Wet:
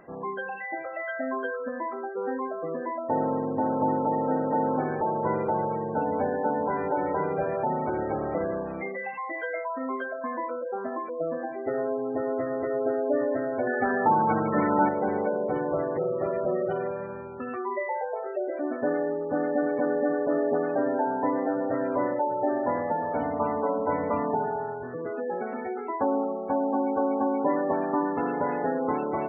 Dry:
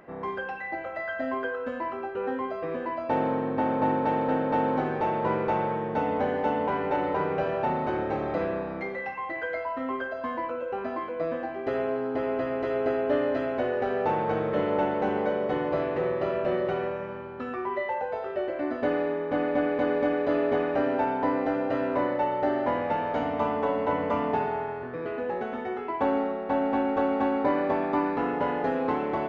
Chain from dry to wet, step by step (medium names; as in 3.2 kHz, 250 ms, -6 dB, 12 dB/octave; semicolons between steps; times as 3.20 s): spectral gate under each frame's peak -20 dB strong; 13.67–14.89 s: ten-band graphic EQ 250 Hz +9 dB, 500 Hz -7 dB, 1 kHz +8 dB, 2 kHz +10 dB